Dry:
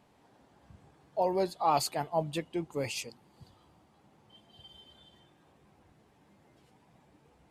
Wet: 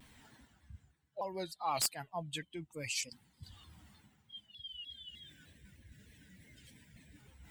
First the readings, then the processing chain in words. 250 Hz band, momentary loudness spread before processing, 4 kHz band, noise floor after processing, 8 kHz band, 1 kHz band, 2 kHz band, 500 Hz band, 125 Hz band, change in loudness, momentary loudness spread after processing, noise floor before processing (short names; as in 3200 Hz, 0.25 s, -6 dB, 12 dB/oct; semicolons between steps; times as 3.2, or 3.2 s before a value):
-10.5 dB, 10 LU, +1.0 dB, -74 dBFS, +2.5 dB, -9.0 dB, -1.0 dB, -12.0 dB, -7.0 dB, -7.5 dB, 25 LU, -65 dBFS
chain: per-bin expansion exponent 1.5; passive tone stack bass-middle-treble 5-5-5; spectral gain 4.54–7.18, 680–1500 Hz -12 dB; wrapped overs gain 31 dB; reverse; upward compressor, threshold -52 dBFS; reverse; bell 7800 Hz +5 dB 0.34 oct; in parallel at -1.5 dB: compressor, threshold -57 dBFS, peak gain reduction 19 dB; on the sum: shaped vibrato saw down 3.3 Hz, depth 160 cents; gain +7.5 dB